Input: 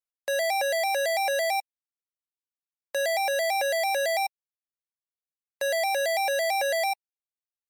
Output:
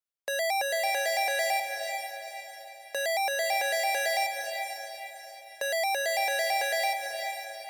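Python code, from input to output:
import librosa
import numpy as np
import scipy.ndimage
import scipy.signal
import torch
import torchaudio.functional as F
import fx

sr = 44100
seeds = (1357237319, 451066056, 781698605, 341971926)

y = fx.dynamic_eq(x, sr, hz=550.0, q=5.0, threshold_db=-39.0, ratio=4.0, max_db=-5)
y = fx.echo_diffused(y, sr, ms=477, feedback_pct=45, wet_db=-6.0)
y = y * 10.0 ** (-1.5 / 20.0)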